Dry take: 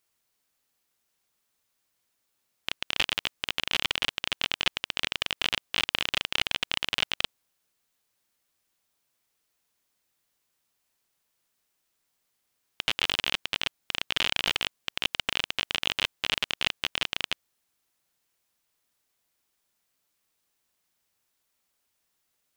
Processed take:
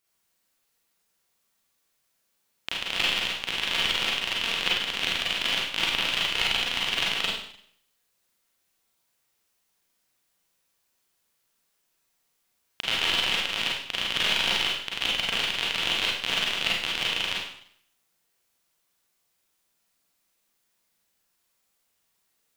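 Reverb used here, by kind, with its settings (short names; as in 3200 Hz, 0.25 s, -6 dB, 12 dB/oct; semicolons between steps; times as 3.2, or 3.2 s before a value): Schroeder reverb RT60 0.64 s, combs from 33 ms, DRR -4.5 dB; gain -2.5 dB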